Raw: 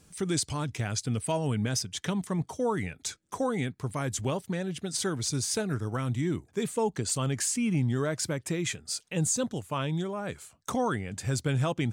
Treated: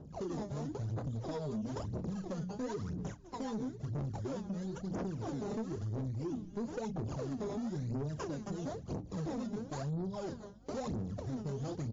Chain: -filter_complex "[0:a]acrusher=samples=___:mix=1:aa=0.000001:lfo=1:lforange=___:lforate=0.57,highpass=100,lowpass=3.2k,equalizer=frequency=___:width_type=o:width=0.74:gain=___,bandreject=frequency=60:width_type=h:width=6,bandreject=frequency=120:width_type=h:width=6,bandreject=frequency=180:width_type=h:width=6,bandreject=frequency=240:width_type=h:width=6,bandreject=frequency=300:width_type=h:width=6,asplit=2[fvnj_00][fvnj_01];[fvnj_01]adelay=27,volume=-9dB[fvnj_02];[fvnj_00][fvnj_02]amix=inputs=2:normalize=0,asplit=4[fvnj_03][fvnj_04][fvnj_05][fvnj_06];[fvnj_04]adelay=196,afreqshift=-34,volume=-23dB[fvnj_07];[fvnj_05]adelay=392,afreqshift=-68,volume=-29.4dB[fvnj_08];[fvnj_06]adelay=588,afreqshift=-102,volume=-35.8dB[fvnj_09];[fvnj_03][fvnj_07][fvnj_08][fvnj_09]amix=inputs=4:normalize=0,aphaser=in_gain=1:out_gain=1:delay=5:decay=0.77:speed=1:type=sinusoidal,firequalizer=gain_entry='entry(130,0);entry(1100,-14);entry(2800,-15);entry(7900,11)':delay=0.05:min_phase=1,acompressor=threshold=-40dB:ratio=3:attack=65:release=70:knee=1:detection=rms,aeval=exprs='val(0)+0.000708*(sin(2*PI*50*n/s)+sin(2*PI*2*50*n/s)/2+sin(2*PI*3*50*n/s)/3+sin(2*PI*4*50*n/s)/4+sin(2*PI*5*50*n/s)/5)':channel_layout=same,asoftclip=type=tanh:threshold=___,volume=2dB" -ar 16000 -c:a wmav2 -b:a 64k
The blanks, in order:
20, 20, 2.3k, -8.5, -34.5dB